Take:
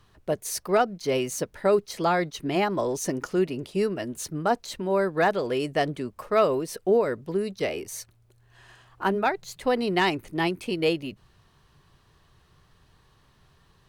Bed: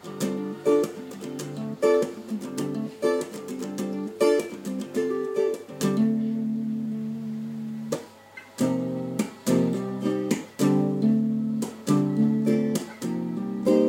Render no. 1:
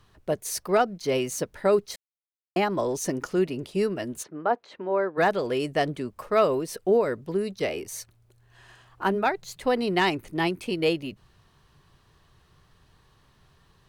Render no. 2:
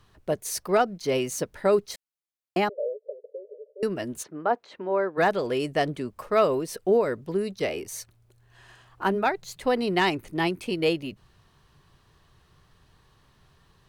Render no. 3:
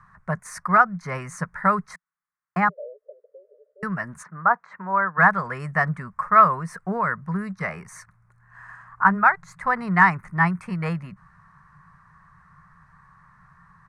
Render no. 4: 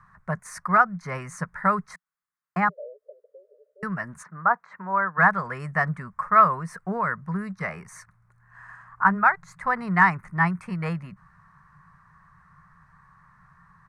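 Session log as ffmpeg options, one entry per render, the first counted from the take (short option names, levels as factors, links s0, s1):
-filter_complex "[0:a]asplit=3[s0][s1][s2];[s0]afade=t=out:st=4.22:d=0.02[s3];[s1]highpass=330,lowpass=2000,afade=t=in:st=4.22:d=0.02,afade=t=out:st=5.17:d=0.02[s4];[s2]afade=t=in:st=5.17:d=0.02[s5];[s3][s4][s5]amix=inputs=3:normalize=0,asplit=3[s6][s7][s8];[s6]atrim=end=1.96,asetpts=PTS-STARTPTS,afade=t=out:st=1.956:d=0.004:c=hsin[s9];[s7]atrim=start=1.96:end=2.56,asetpts=PTS-STARTPTS,volume=0[s10];[s8]atrim=start=2.56,asetpts=PTS-STARTPTS,afade=t=in:d=0.004:c=hsin[s11];[s9][s10][s11]concat=n=3:v=0:a=1"
-filter_complex "[0:a]asettb=1/sr,asplit=3[s0][s1][s2];[s0]atrim=end=2.694[s3];[s1]atrim=start=2.69:end=3.83,asetpts=PTS-STARTPTS,afade=t=in:d=0.004:c=qsin,afade=t=out:st=1.136:d=0.004:c=qsin,asuperpass=centerf=510:order=12:qfactor=2.6[s4];[s2]atrim=start=3.826[s5];[s3][s4]acrossfade=d=0.004:c1=hsin:c2=qsin[s6];[s6][s5]acrossfade=d=0.004:c1=qsin:c2=hsin"
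-af "firequalizer=gain_entry='entry(110,0);entry(170,12);entry(290,-18);entry(1100,15);entry(1900,10);entry(3000,-19);entry(5500,-9);entry(9100,-6);entry(15000,-27)':delay=0.05:min_phase=1"
-af "volume=0.794"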